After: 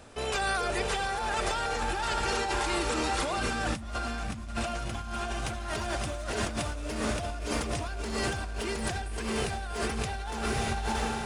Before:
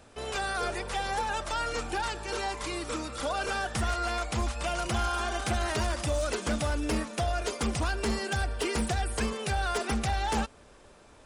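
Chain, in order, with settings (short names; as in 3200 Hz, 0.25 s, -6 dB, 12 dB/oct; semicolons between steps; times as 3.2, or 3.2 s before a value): rattling part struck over -39 dBFS, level -35 dBFS; 3.37–4.48 resonant low shelf 310 Hz +6.5 dB, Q 3; diffused feedback echo 0.628 s, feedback 43%, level -3.5 dB; negative-ratio compressor -32 dBFS, ratio -1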